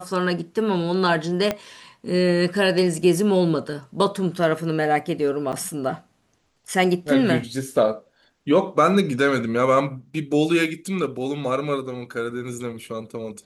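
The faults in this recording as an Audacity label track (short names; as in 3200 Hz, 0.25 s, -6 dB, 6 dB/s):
1.510000	1.510000	pop -9 dBFS
5.520000	5.530000	gap 8 ms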